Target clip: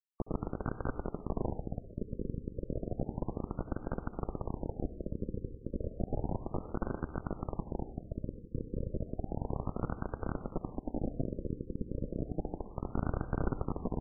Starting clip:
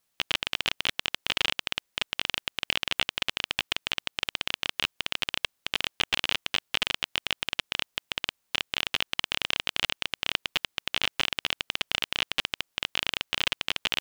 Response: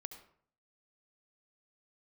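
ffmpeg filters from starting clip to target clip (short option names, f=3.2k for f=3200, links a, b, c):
-filter_complex "[0:a]highpass=f=180:t=q:w=0.5412,highpass=f=180:t=q:w=1.307,lowpass=f=2.8k:t=q:w=0.5176,lowpass=f=2.8k:t=q:w=0.7071,lowpass=f=2.8k:t=q:w=1.932,afreqshift=-160,asettb=1/sr,asplit=3[a][b][c];[a]atrim=end=12.894[d];[b]atrim=start=12.89:end=13.7,asetpts=PTS-STARTPTS,afade=t=in:d=0.004:c=qsin,afade=t=out:st=0.806:d=0.004:c=qsin,acontrast=34[e];[c]atrim=start=13.696[f];[d][e]acrossfade=d=0.004:c1=hsin:c2=qsin[g];[g][f]acrossfade=d=0.004:c1=qsin:c2=hsin,asoftclip=type=tanh:threshold=-27dB,asettb=1/sr,asplit=3[h][i][j];[h]atrim=end=10.704[k];[i]atrim=start=10.7:end=11.16,asetpts=PTS-STARTPTS,afade=t=in:d=0.004:c=qsin,afade=t=out:st=0.456:d=0.004:c=qsin,equalizer=f=125:t=o:w=1:g=-4,equalizer=f=250:t=o:w=1:g=9,equalizer=f=500:t=o:w=1:g=-9[l];[j]atrim=start=11.156[m];[k][l]acrossfade=d=0.004:c1=hsin:c2=qsin[n];[n][m]acrossfade=d=0.004:c1=qsin:c2=hsin,acrusher=bits=5:dc=4:mix=0:aa=0.000001,aecho=1:1:849|1698|2547|3396|4245:0.178|0.096|0.0519|0.028|0.0151,asplit=2[o][p];[1:a]atrim=start_sample=2205[q];[p][q]afir=irnorm=-1:irlink=0,volume=9dB[r];[o][r]amix=inputs=2:normalize=0,afftfilt=real='re*lt(b*sr/1024,540*pow(1600/540,0.5+0.5*sin(2*PI*0.32*pts/sr)))':imag='im*lt(b*sr/1024,540*pow(1600/540,0.5+0.5*sin(2*PI*0.32*pts/sr)))':win_size=1024:overlap=0.75,volume=2.5dB"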